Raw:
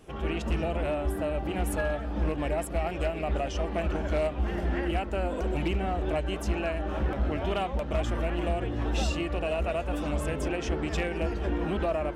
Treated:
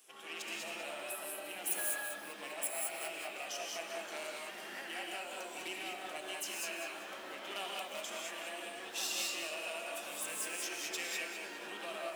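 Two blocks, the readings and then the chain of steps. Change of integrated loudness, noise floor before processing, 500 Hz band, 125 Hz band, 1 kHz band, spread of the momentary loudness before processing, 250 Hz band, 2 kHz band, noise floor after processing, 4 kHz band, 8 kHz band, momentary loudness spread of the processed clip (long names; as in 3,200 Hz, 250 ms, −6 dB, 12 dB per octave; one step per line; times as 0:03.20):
−9.5 dB, −35 dBFS, −15.0 dB, below −35 dB, −10.5 dB, 2 LU, −21.0 dB, −3.5 dB, −47 dBFS, +0.5 dB, +6.5 dB, 8 LU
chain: stylus tracing distortion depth 0.028 ms
high-pass filter 190 Hz 24 dB per octave
first difference
reverb whose tail is shaped and stops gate 230 ms rising, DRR −1.5 dB
feedback echo at a low word length 196 ms, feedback 35%, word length 10 bits, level −8.5 dB
level +3 dB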